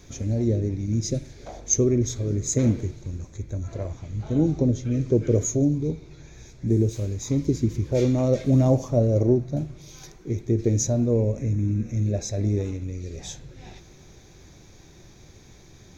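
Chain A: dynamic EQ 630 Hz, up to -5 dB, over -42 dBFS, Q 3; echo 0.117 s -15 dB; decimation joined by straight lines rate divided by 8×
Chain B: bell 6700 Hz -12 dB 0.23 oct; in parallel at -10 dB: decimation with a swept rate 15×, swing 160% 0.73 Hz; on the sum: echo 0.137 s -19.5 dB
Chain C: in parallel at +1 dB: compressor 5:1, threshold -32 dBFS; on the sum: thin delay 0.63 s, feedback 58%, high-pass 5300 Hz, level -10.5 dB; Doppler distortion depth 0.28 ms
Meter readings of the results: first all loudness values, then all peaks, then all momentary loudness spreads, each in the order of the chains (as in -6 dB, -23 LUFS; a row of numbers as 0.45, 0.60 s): -24.5, -22.0, -22.0 LUFS; -8.5, -7.0, -7.0 dBFS; 14, 14, 15 LU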